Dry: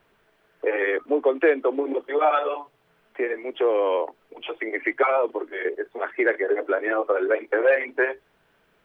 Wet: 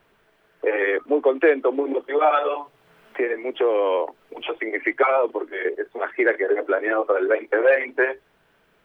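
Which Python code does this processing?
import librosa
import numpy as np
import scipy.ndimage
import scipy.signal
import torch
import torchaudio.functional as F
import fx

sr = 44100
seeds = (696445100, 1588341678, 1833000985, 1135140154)

y = fx.band_squash(x, sr, depth_pct=40, at=(2.44, 4.59))
y = y * 10.0 ** (2.0 / 20.0)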